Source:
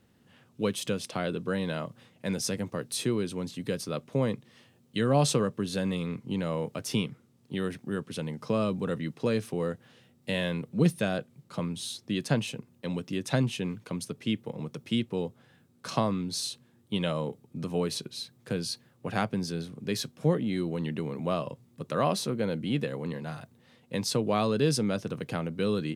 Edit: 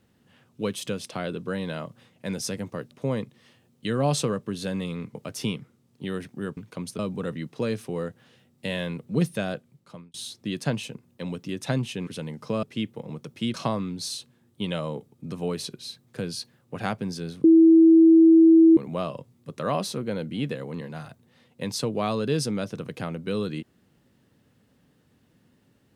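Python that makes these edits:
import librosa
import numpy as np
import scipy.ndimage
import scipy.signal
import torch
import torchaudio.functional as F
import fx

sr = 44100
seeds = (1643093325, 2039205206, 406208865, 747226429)

y = fx.edit(x, sr, fx.cut(start_s=2.91, length_s=1.11),
    fx.cut(start_s=6.26, length_s=0.39),
    fx.swap(start_s=8.07, length_s=0.56, other_s=13.71, other_length_s=0.42),
    fx.fade_out_span(start_s=11.17, length_s=0.61),
    fx.cut(start_s=15.04, length_s=0.82),
    fx.bleep(start_s=19.76, length_s=1.33, hz=326.0, db=-10.5), tone=tone)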